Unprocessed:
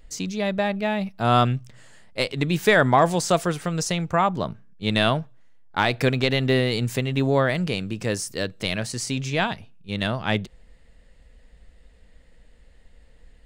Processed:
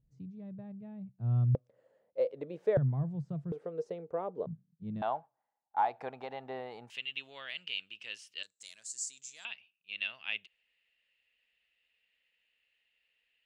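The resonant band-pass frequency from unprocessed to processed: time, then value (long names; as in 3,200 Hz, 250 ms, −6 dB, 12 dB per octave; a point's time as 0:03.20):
resonant band-pass, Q 7.4
130 Hz
from 0:01.55 520 Hz
from 0:02.77 140 Hz
from 0:03.52 460 Hz
from 0:04.46 160 Hz
from 0:05.02 820 Hz
from 0:06.90 2,900 Hz
from 0:08.43 7,300 Hz
from 0:09.45 2,700 Hz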